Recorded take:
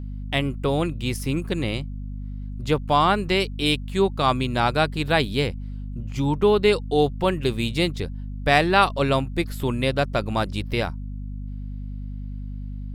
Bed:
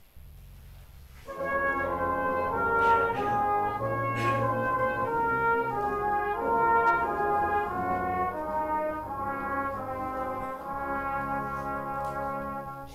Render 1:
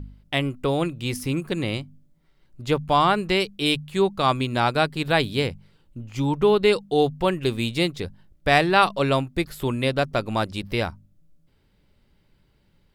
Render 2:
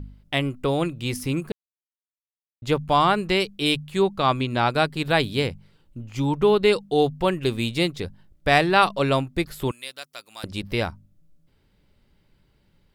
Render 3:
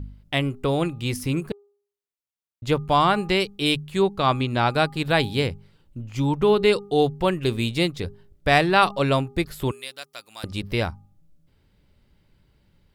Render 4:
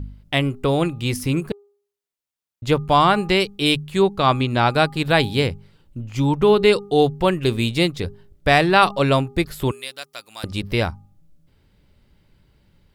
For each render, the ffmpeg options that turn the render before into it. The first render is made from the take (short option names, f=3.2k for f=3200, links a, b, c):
-af "bandreject=f=50:t=h:w=4,bandreject=f=100:t=h:w=4,bandreject=f=150:t=h:w=4,bandreject=f=200:t=h:w=4,bandreject=f=250:t=h:w=4"
-filter_complex "[0:a]asettb=1/sr,asplit=3[a][b][c];[a]atrim=end=4.034[d];[b]atrim=start=4.03:end=4.7,asetpts=PTS-STARTPTS,afade=t=in:d=0.004:c=qsin,afade=t=out:st=0.666:d=0.004:c=qsin,acrossover=split=5500[e][f];[f]acompressor=threshold=-54dB:ratio=4:attack=1:release=60[g];[e][g]amix=inputs=2:normalize=0[h];[c]atrim=start=4.696[i];[d][h]acrossfade=d=0.004:c1=hsin:c2=qsin[j];[j][i]acrossfade=d=0.004:c1=qsin:c2=hsin,asettb=1/sr,asplit=3[k][l][m];[k]atrim=end=9.714[n];[l]atrim=start=9.71:end=10.44,asetpts=PTS-STARTPTS,afade=t=in:d=0.004:c=qsin,afade=t=out:st=0.726:d=0.004:c=qsin,aderivative[o];[m]atrim=start=10.436[p];[n][o]acrossfade=d=0.004:c1=hsin:c2=qsin[q];[q][p]acrossfade=d=0.004:c1=qsin:c2=hsin,asplit=3[r][s][t];[r]atrim=end=1.52,asetpts=PTS-STARTPTS,afade=t=out:st=1.516:d=0.004:c=hsin[u];[s]atrim=start=1.52:end=2.62,asetpts=PTS-STARTPTS,volume=0[v];[t]atrim=start=2.62,asetpts=PTS-STARTPTS,afade=t=in:d=0.004:c=hsin[w];[u][v][w]concat=n=3:v=0:a=1"
-af "equalizer=f=76:t=o:w=1.5:g=4,bandreject=f=405.9:t=h:w=4,bandreject=f=811.8:t=h:w=4,bandreject=f=1.2177k:t=h:w=4"
-af "volume=3.5dB,alimiter=limit=-2dB:level=0:latency=1"